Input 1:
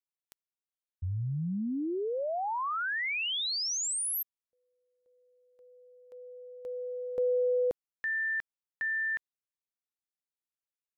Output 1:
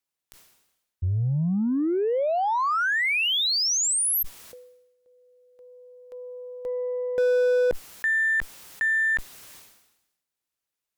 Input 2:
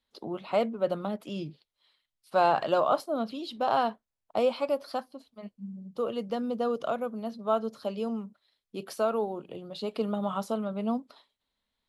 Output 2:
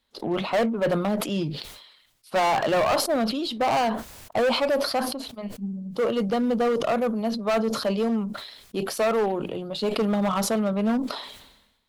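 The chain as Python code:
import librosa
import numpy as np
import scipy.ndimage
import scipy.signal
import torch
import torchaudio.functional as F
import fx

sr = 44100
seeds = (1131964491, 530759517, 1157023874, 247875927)

y = np.clip(x, -10.0 ** (-27.5 / 20.0), 10.0 ** (-27.5 / 20.0))
y = fx.cheby_harmonics(y, sr, harmonics=(6,), levels_db=(-31,), full_scale_db=-27.5)
y = fx.sustainer(y, sr, db_per_s=59.0)
y = F.gain(torch.from_numpy(y), 8.5).numpy()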